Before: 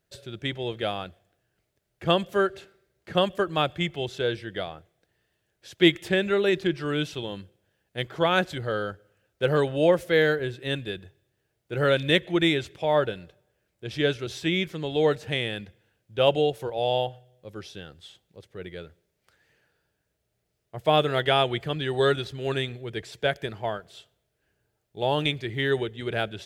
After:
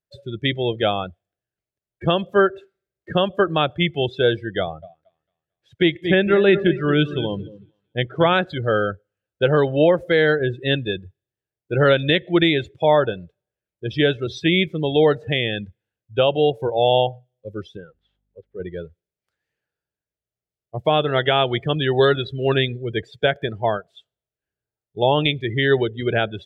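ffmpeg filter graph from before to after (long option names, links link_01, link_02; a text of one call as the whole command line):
ffmpeg -i in.wav -filter_complex "[0:a]asettb=1/sr,asplit=3[link_01][link_02][link_03];[link_01]atrim=end=4.604[link_04];[link_02]atrim=start=4.6:end=8.33,asetpts=PTS-STARTPTS,afade=type=in:duration=0.004:curve=qsin,afade=type=out:start_time=3.726:duration=0.004:curve=qsin,bass=frequency=250:gain=2,treble=frequency=4000:gain=-6,aecho=1:1:225|450|675|900:0.224|0.0828|0.0306|0.0113,atrim=end_sample=164493[link_05];[link_03]atrim=start=8.326[link_06];[link_04][link_05]acrossfade=duration=0.004:curve1=hsin:curve2=qsin[link_07];[link_07][link_06]acrossfade=duration=0.004:curve1=qsin:curve2=hsin,asettb=1/sr,asplit=3[link_08][link_09][link_10];[link_08]atrim=end=17.774[link_11];[link_09]atrim=start=17.77:end=18.6,asetpts=PTS-STARTPTS,afade=type=in:duration=0.004:curve=qsin,afade=type=out:start_time=0.826:duration=0.004:curve=qsin,lowshelf=frequency=150:gain=-11.5,aeval=exprs='val(0)+0.00126*(sin(2*PI*50*n/s)+sin(2*PI*2*50*n/s)/2+sin(2*PI*3*50*n/s)/3+sin(2*PI*4*50*n/s)/4+sin(2*PI*5*50*n/s)/5)':channel_layout=same,lowpass=2000[link_12];[link_10]atrim=start=18.596[link_13];[link_11][link_12]acrossfade=duration=0.004:curve1=hsin:curve2=qsin[link_14];[link_14][link_13]acrossfade=duration=0.004:curve1=qsin:curve2=hsin,afftdn=noise_reduction=25:noise_floor=-36,alimiter=limit=-15dB:level=0:latency=1:release=324,volume=9dB" out.wav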